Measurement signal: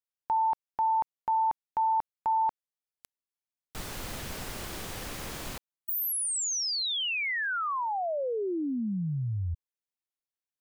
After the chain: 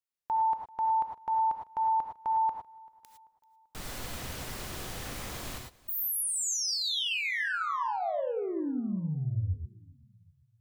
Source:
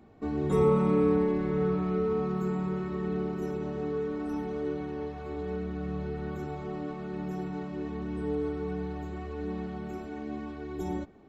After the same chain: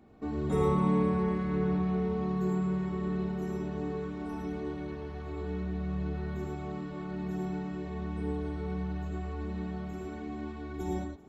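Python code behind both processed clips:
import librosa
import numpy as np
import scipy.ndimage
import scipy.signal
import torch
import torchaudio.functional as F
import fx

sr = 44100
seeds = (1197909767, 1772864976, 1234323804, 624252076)

p1 = x + fx.echo_feedback(x, sr, ms=388, feedback_pct=47, wet_db=-23.5, dry=0)
p2 = fx.rev_gated(p1, sr, seeds[0], gate_ms=130, shape='rising', drr_db=2.5)
y = F.gain(torch.from_numpy(p2), -3.0).numpy()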